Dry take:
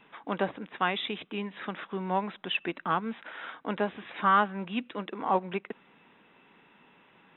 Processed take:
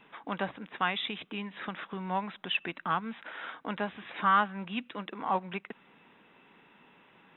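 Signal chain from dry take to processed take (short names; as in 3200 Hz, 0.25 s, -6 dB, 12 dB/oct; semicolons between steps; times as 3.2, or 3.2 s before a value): dynamic EQ 400 Hz, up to -8 dB, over -43 dBFS, Q 0.89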